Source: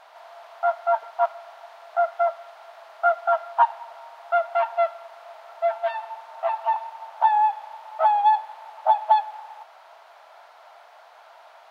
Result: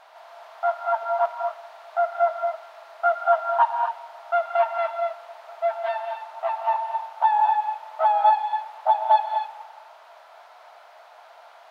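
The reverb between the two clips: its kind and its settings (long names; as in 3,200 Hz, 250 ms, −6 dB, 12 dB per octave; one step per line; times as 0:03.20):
reverb whose tail is shaped and stops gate 280 ms rising, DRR 3.5 dB
level −1 dB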